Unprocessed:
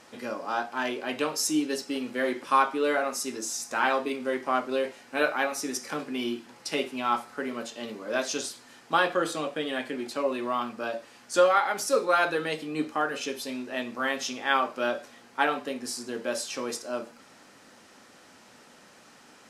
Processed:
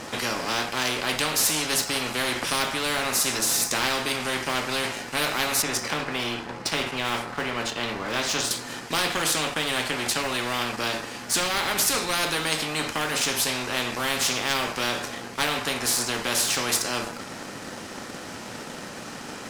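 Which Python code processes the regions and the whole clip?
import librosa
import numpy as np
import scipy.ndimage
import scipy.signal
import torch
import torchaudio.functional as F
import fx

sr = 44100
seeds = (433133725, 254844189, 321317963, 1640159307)

y = fx.chain(x, sr, fx.lowpass(hz=1900.0, slope=6),
    fx.doubler(ms=26.0, db=-14.0), at=(5.62, 8.51))
y = fx.low_shelf(y, sr, hz=300.0, db=8.0)
y = fx.leveller(y, sr, passes=1)
y = fx.spectral_comp(y, sr, ratio=4.0)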